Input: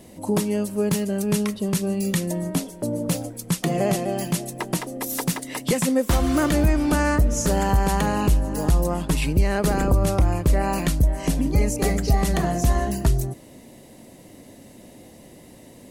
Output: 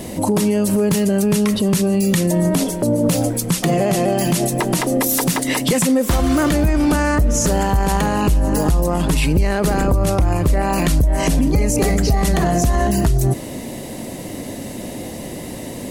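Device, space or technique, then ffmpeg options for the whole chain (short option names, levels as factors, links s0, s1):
loud club master: -af "acompressor=threshold=0.0794:ratio=2.5,asoftclip=type=hard:threshold=0.158,alimiter=level_in=16.8:limit=0.891:release=50:level=0:latency=1,volume=0.398"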